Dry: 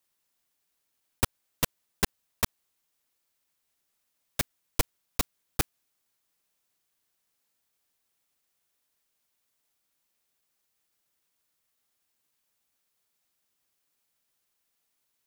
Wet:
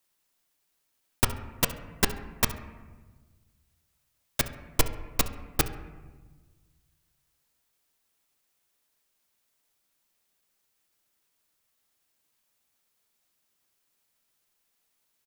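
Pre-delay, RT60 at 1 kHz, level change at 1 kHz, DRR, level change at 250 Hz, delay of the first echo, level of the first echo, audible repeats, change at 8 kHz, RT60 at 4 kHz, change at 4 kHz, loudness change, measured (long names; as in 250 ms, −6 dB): 3 ms, 1.2 s, +3.0 dB, 8.5 dB, +3.5 dB, 68 ms, −18.5 dB, 1, +2.5 dB, 0.85 s, +2.5 dB, +3.0 dB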